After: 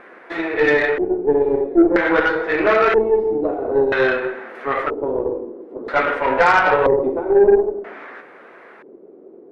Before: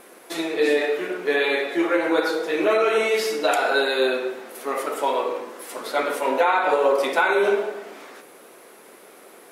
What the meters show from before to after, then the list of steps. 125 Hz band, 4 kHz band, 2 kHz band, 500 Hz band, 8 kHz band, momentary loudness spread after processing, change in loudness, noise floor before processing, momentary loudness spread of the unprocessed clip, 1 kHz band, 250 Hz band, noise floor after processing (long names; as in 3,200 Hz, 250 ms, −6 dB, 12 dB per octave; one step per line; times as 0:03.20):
can't be measured, −5.5 dB, +4.0 dB, +5.0 dB, below −10 dB, 13 LU, +4.5 dB, −48 dBFS, 13 LU, +3.5 dB, +7.0 dB, −44 dBFS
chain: auto-filter low-pass square 0.51 Hz 370–1,800 Hz
harmonic generator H 6 −23 dB, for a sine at −3.5 dBFS
level +2.5 dB